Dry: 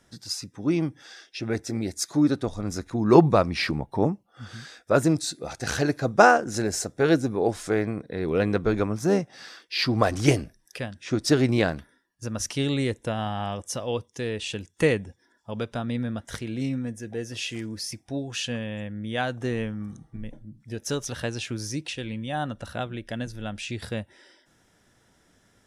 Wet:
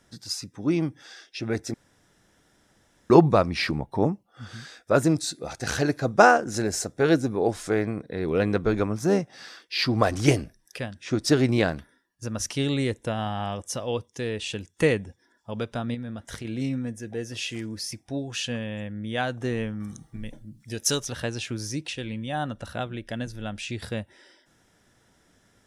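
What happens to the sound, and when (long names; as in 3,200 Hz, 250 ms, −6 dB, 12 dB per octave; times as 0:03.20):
0:01.74–0:03.10: fill with room tone
0:15.94–0:16.45: downward compressor, threshold −31 dBFS
0:19.80–0:21.00: high-shelf EQ 2,600 Hz +12 dB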